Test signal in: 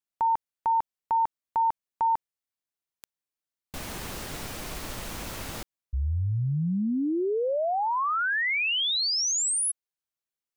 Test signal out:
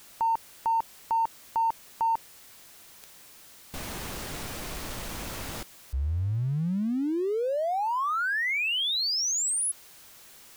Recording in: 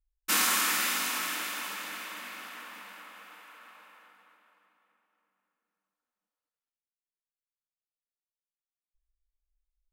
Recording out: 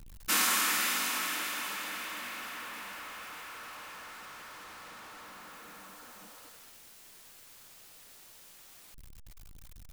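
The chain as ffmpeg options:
ffmpeg -i in.wav -af "aeval=exprs='val(0)+0.5*0.00944*sgn(val(0))':channel_layout=same,volume=-2dB" out.wav

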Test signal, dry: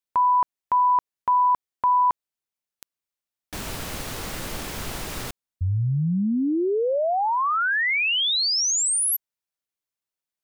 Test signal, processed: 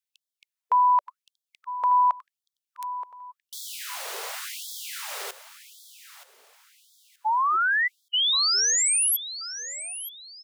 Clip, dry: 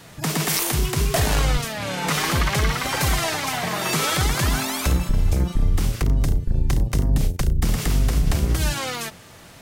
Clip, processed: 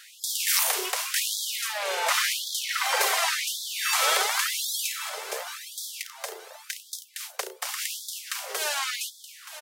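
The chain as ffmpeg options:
ffmpeg -i in.wav -af "aecho=1:1:925|1850|2775:0.224|0.0739|0.0244,afftfilt=real='re*gte(b*sr/1024,360*pow(3300/360,0.5+0.5*sin(2*PI*0.9*pts/sr)))':imag='im*gte(b*sr/1024,360*pow(3300/360,0.5+0.5*sin(2*PI*0.9*pts/sr)))':win_size=1024:overlap=0.75" out.wav

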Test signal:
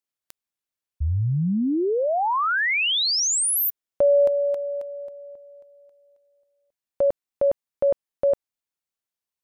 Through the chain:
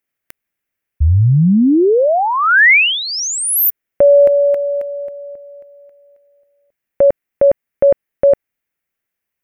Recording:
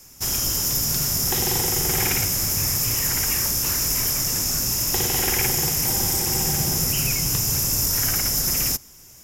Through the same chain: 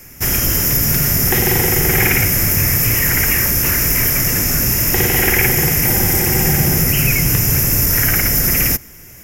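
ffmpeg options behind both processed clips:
ffmpeg -i in.wav -filter_complex "[0:a]equalizer=frequency=1000:width_type=o:width=1:gain=-7,equalizer=frequency=2000:width_type=o:width=1:gain=8,equalizer=frequency=4000:width_type=o:width=1:gain=-12,equalizer=frequency=8000:width_type=o:width=1:gain=-8,asplit=2[link_01][link_02];[link_02]alimiter=limit=-17.5dB:level=0:latency=1,volume=1dB[link_03];[link_01][link_03]amix=inputs=2:normalize=0,volume=5.5dB" out.wav

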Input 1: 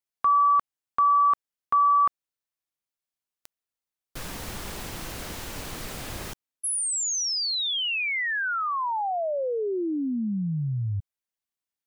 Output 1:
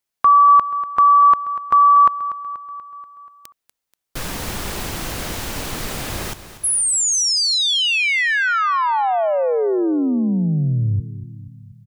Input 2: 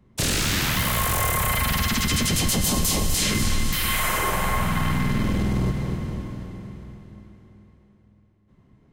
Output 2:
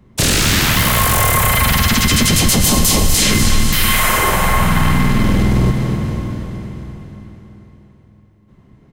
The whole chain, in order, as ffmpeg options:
ffmpeg -i in.wav -af "aecho=1:1:241|482|723|964|1205|1446:0.2|0.116|0.0671|0.0389|0.0226|0.0131,volume=9dB" out.wav

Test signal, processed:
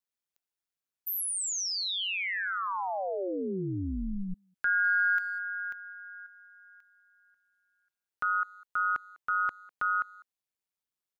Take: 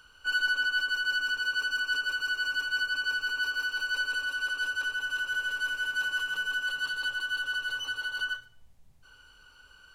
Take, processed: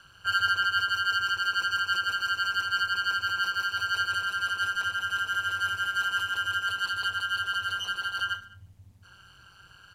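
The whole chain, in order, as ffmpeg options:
ffmpeg -i in.wav -filter_complex "[0:a]aeval=exprs='val(0)*sin(2*PI*95*n/s)':channel_layout=same,asplit=2[link_01][link_02];[link_02]adelay=200,highpass=300,lowpass=3400,asoftclip=type=hard:threshold=-28dB,volume=-23dB[link_03];[link_01][link_03]amix=inputs=2:normalize=0,volume=5dB" out.wav

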